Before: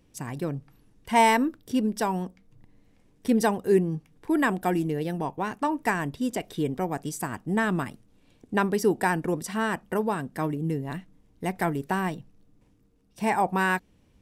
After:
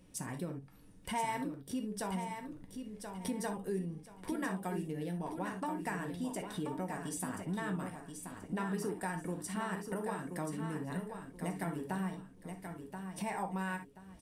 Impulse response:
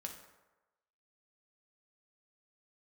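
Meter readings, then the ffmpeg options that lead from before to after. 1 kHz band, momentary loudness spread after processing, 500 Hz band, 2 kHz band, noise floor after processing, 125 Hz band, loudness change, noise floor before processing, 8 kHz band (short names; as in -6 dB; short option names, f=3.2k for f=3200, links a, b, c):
-13.0 dB, 9 LU, -13.5 dB, -13.5 dB, -57 dBFS, -9.0 dB, -12.5 dB, -62 dBFS, -6.0 dB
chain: -filter_complex "[0:a]equalizer=f=9.2k:w=5.1:g=11[a];[1:a]atrim=start_sample=2205,atrim=end_sample=3528[b];[a][b]afir=irnorm=-1:irlink=0,acompressor=threshold=-45dB:ratio=3,aecho=1:1:1030|2060|3090:0.447|0.125|0.035,volume=4.5dB"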